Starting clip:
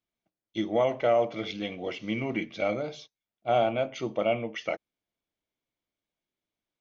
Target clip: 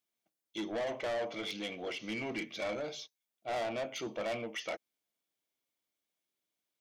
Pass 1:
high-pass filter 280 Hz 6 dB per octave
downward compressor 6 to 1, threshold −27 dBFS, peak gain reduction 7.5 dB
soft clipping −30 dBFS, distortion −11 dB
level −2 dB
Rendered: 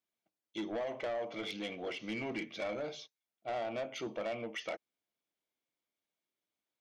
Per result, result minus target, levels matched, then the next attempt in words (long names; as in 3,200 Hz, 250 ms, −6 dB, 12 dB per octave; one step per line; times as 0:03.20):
downward compressor: peak gain reduction +7.5 dB; 8,000 Hz band −4.5 dB
high-pass filter 280 Hz 6 dB per octave
soft clipping −30 dBFS, distortion −6 dB
level −2 dB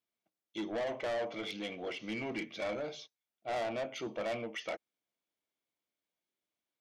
8,000 Hz band −4.0 dB
high-pass filter 280 Hz 6 dB per octave
high-shelf EQ 4,600 Hz +9 dB
soft clipping −30 dBFS, distortion −6 dB
level −2 dB